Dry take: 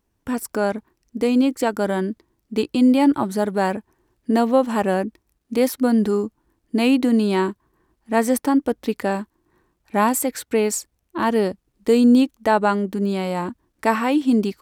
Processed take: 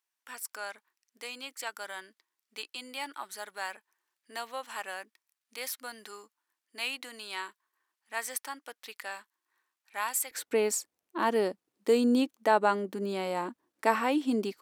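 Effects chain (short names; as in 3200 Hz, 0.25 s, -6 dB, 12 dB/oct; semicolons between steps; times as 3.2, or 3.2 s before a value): HPF 1500 Hz 12 dB/oct, from 10.31 s 320 Hz; gain -6 dB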